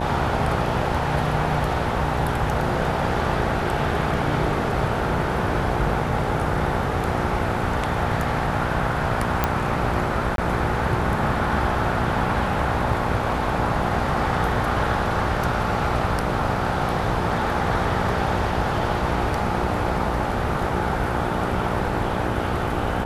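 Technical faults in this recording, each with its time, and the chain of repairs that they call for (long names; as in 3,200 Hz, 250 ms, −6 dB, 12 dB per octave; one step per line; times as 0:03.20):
mains buzz 60 Hz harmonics 15 −28 dBFS
0:09.44: click −5 dBFS
0:10.36–0:10.38: drop-out 22 ms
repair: click removal
hum removal 60 Hz, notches 15
repair the gap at 0:10.36, 22 ms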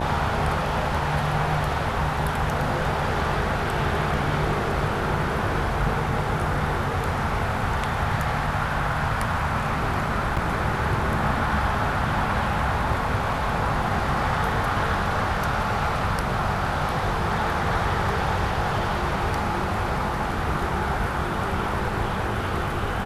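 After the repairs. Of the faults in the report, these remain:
none of them is left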